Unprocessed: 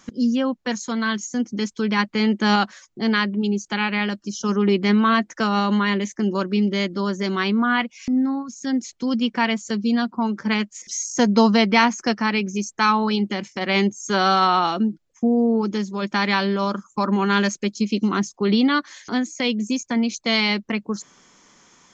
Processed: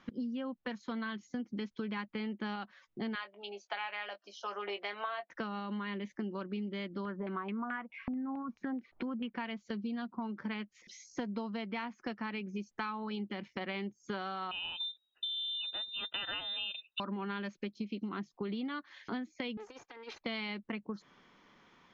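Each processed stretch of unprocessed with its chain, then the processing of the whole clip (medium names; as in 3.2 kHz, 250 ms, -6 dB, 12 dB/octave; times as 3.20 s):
3.15–5.30 s: Chebyshev high-pass 580 Hz, order 3 + peaking EQ 700 Hz +9 dB 0.37 oct + doubling 20 ms -9 dB
7.05–9.31 s: upward compressor, threshold -22 dBFS + LFO low-pass saw down 4.6 Hz 710–2400 Hz
14.51–17.00 s: static phaser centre 1.6 kHz, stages 6 + frequency inversion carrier 3.8 kHz
19.57–20.21 s: comb filter that takes the minimum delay 2.5 ms + high-pass 940 Hz 6 dB/octave + compressor with a negative ratio -36 dBFS, ratio -0.5
whole clip: low-pass 3.7 kHz 24 dB/octave; compression 12:1, threshold -28 dBFS; trim -7 dB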